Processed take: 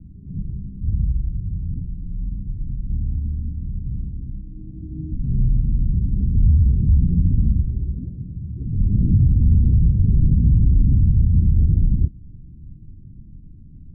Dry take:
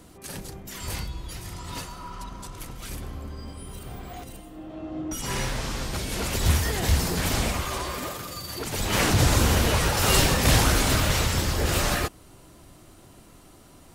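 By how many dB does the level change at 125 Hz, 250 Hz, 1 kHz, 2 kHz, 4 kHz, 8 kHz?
+9.5 dB, +4.5 dB, under -40 dB, under -40 dB, under -40 dB, under -40 dB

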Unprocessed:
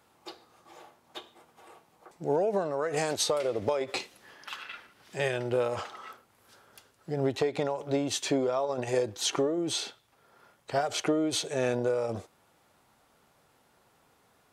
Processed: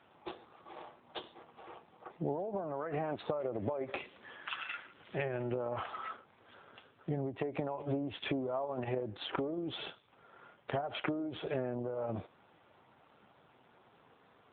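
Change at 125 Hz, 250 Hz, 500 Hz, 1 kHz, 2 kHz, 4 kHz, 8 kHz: -3.5 dB, -6.0 dB, -8.5 dB, -5.5 dB, -6.0 dB, -11.0 dB, under -40 dB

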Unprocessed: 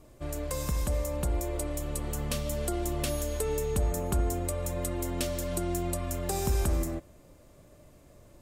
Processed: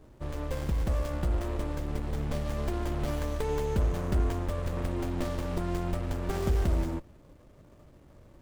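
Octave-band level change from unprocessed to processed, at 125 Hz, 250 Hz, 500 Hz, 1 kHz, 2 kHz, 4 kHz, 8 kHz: +1.5, +0.5, -1.5, 0.0, 0.0, -4.5, -13.5 dB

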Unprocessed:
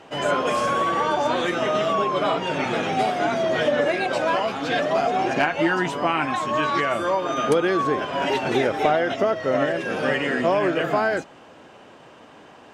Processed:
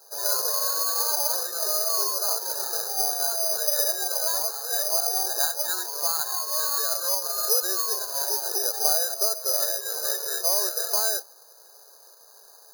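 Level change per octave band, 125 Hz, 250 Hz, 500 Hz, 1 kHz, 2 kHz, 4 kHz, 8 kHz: under -40 dB, under -25 dB, -12.0 dB, -11.5 dB, -13.5 dB, +3.5 dB, +19.0 dB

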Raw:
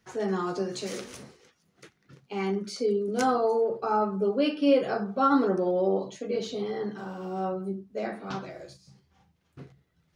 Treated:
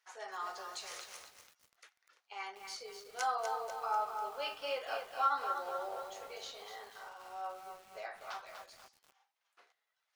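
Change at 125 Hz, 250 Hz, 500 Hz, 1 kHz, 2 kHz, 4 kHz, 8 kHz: under -35 dB, under -35 dB, -17.5 dB, -6.0 dB, -5.0 dB, -5.0 dB, -5.0 dB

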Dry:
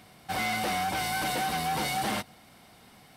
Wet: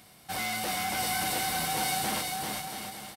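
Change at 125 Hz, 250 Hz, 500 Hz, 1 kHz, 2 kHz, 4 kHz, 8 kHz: -2.5, -2.5, -2.0, -2.0, -1.0, +1.5, +5.5 dB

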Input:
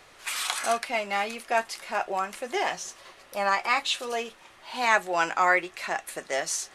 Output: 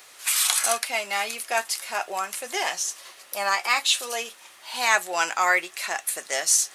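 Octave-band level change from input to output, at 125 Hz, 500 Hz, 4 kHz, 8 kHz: n/a, -2.0 dB, +6.0 dB, +11.0 dB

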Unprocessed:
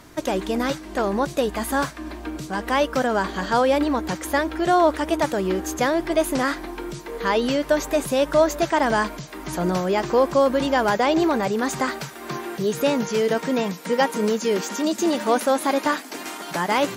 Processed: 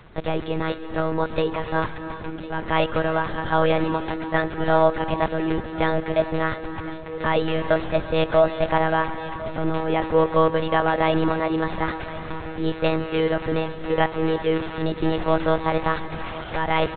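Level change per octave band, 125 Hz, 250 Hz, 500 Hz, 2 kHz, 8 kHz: +5.5 dB, -2.0 dB, -1.0 dB, -1.0 dB, under -40 dB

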